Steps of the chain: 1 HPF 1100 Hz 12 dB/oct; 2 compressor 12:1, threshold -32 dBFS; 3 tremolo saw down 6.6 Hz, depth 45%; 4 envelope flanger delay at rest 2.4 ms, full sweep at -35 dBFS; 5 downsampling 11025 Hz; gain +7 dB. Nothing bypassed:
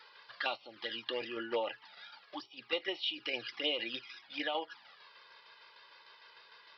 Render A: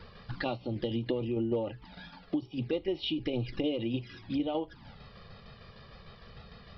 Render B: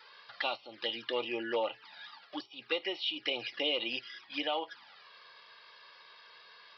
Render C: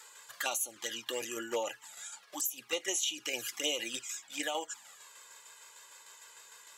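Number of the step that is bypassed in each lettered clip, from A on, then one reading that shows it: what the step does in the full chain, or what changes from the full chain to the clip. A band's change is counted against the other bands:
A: 1, 125 Hz band +30.5 dB; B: 3, loudness change +2.5 LU; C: 5, momentary loudness spread change -3 LU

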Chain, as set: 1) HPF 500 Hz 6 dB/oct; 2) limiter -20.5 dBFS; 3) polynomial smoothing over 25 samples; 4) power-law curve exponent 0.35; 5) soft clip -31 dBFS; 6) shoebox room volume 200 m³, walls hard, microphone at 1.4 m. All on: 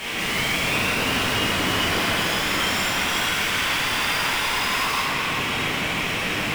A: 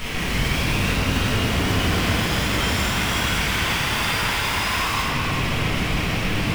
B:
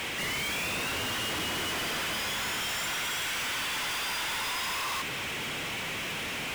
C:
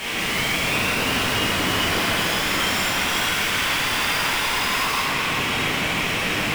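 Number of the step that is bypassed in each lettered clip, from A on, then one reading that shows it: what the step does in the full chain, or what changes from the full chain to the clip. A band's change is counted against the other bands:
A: 1, 125 Hz band +10.0 dB; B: 6, echo-to-direct 9.5 dB to none; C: 2, mean gain reduction 4.5 dB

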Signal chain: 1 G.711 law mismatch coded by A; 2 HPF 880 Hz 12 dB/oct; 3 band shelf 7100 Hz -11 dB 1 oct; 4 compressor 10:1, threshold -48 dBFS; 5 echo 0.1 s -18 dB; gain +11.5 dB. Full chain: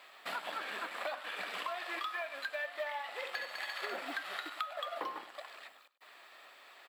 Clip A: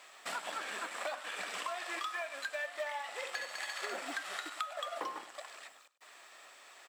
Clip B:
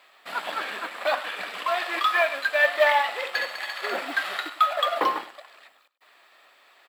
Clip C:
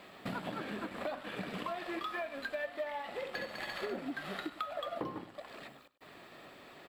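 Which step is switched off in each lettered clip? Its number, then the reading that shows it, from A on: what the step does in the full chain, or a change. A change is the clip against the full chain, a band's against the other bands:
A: 3, 8 kHz band +10.0 dB; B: 4, mean gain reduction 11.0 dB; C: 2, 250 Hz band +16.0 dB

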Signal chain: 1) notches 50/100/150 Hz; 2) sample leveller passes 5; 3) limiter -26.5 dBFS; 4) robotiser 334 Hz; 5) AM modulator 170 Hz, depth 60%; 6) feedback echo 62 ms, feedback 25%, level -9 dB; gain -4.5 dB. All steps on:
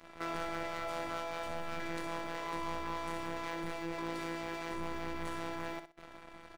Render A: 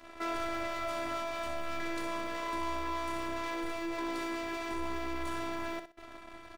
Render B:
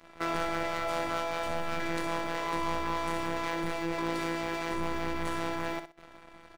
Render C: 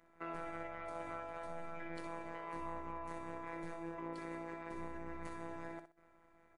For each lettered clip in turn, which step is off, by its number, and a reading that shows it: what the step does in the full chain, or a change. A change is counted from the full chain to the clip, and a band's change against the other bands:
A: 5, crest factor change -3.0 dB; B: 3, mean gain reduction 6.0 dB; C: 2, crest factor change -2.0 dB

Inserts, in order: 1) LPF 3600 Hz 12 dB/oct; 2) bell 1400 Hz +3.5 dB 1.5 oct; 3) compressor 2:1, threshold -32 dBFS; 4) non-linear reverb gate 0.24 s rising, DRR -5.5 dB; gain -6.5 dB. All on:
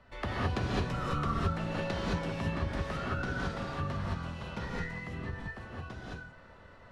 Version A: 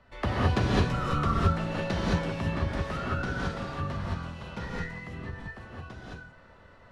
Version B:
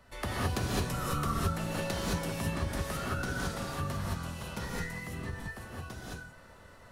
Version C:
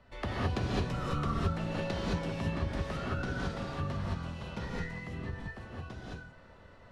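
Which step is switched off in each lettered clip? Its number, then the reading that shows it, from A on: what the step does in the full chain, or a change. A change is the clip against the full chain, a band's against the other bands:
3, momentary loudness spread change +6 LU; 1, 8 kHz band +13.0 dB; 2, 2 kHz band -2.5 dB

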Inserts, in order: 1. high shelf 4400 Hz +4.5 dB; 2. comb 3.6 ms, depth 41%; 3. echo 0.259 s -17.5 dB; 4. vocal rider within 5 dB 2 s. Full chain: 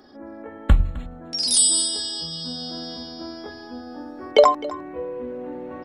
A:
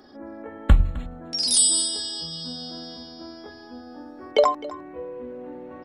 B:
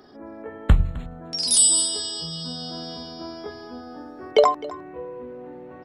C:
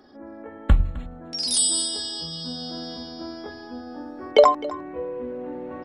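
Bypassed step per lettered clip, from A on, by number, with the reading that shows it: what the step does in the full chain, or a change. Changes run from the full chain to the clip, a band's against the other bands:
4, 125 Hz band +3.0 dB; 2, momentary loudness spread change +2 LU; 1, 8 kHz band -3.0 dB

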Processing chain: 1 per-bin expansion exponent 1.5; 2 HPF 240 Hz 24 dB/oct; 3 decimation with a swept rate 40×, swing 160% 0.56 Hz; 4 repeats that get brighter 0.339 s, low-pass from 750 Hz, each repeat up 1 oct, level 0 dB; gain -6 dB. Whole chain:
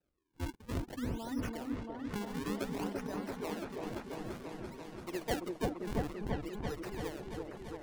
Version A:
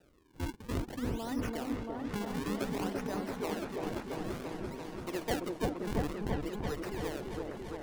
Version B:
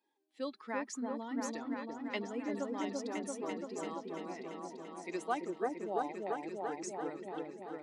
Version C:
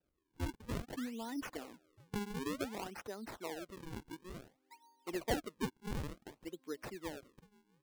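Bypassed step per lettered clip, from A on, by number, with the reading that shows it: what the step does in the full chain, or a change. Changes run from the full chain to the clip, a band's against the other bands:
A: 1, loudness change +2.5 LU; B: 3, 125 Hz band -15.0 dB; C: 4, momentary loudness spread change +6 LU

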